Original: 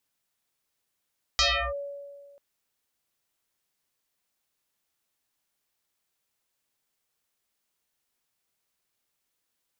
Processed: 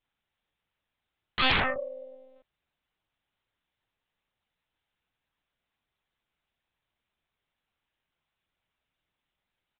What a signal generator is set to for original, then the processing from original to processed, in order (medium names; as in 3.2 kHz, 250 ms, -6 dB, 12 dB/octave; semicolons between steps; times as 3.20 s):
FM tone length 0.99 s, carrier 566 Hz, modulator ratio 1.11, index 9, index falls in 0.34 s linear, decay 1.77 s, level -18 dB
doubling 35 ms -4 dB; monotone LPC vocoder at 8 kHz 260 Hz; loudspeaker Doppler distortion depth 0.32 ms